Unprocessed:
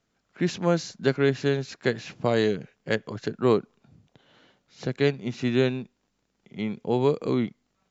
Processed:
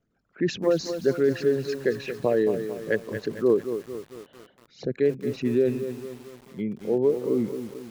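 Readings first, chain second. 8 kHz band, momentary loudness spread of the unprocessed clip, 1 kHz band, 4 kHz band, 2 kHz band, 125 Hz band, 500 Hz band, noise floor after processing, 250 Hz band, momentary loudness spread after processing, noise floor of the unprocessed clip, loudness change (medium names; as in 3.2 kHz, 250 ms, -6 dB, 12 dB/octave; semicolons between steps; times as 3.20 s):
no reading, 10 LU, -6.0 dB, -5.0 dB, -3.5 dB, -5.5 dB, +2.5 dB, -64 dBFS, 0.0 dB, 14 LU, -75 dBFS, +0.5 dB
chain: resonances exaggerated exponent 2; dynamic bell 1.6 kHz, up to +6 dB, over -46 dBFS, Q 1.2; bit-crushed delay 224 ms, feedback 55%, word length 7-bit, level -9 dB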